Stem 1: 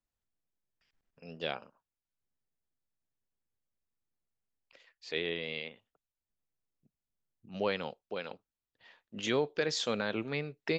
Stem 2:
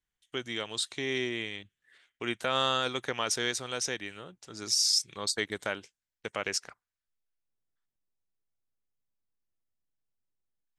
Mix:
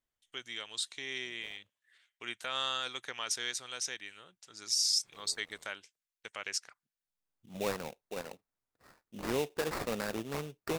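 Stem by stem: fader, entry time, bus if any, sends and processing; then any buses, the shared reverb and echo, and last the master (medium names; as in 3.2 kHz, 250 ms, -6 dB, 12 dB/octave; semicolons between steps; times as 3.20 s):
-2.5 dB, 0.00 s, no send, sample-rate reducer 3.2 kHz, jitter 20%; auto duck -23 dB, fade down 1.60 s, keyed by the second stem
-10.0 dB, 0.00 s, no send, tilt shelf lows -7 dB, about 840 Hz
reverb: none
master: none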